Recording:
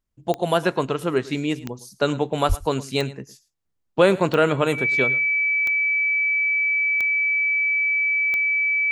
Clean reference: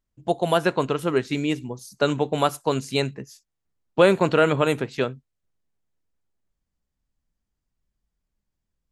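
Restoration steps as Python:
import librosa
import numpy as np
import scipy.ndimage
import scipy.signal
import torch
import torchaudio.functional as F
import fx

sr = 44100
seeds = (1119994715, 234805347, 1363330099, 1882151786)

y = fx.fix_declick_ar(x, sr, threshold=10.0)
y = fx.notch(y, sr, hz=2300.0, q=30.0)
y = fx.fix_deplosive(y, sr, at_s=(2.48,))
y = fx.fix_echo_inverse(y, sr, delay_ms=110, level_db=-19.0)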